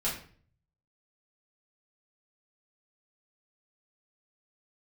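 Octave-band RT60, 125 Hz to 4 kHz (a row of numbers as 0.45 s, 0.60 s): 0.95 s, 0.60 s, 0.50 s, 0.45 s, 0.45 s, 0.40 s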